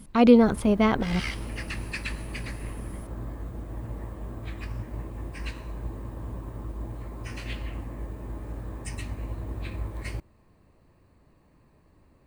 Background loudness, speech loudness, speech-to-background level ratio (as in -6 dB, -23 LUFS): -37.0 LUFS, -21.0 LUFS, 16.0 dB